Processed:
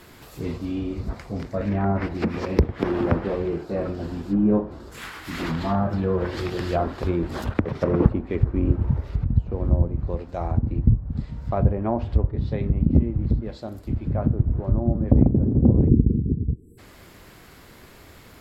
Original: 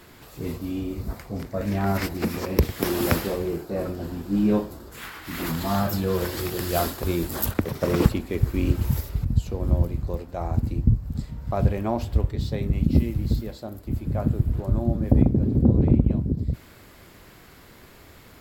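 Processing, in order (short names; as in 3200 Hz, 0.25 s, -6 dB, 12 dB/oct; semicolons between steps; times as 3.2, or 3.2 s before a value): spectral delete 15.88–16.78, 490–7600 Hz; treble ducked by the level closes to 1100 Hz, closed at -19 dBFS; gain +1.5 dB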